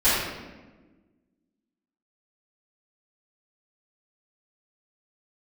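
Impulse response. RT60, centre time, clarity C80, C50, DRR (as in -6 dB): 1.3 s, 87 ms, 1.5 dB, -2.0 dB, -17.0 dB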